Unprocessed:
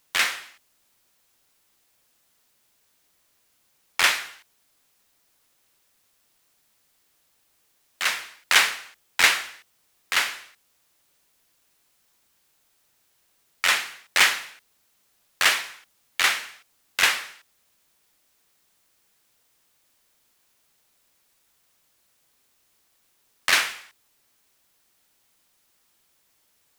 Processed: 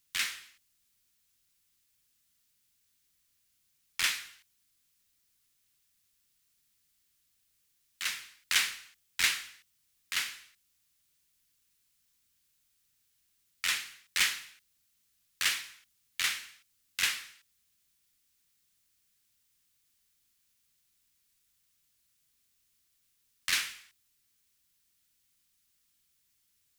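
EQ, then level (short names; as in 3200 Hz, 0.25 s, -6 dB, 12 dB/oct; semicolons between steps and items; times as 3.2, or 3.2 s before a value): passive tone stack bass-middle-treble 6-0-2; +8.0 dB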